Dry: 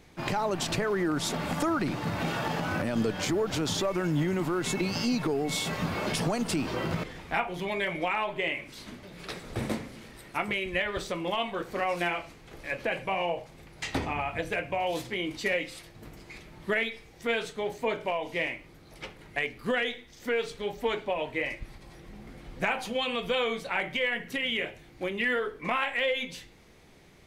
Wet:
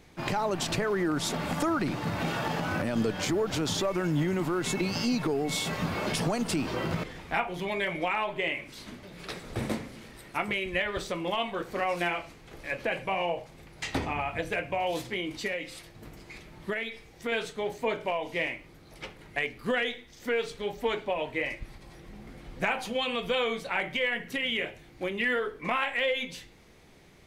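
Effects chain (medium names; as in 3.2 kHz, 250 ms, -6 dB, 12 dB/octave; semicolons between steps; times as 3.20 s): 15.18–17.32 s: compression 4:1, threshold -29 dBFS, peak gain reduction 6 dB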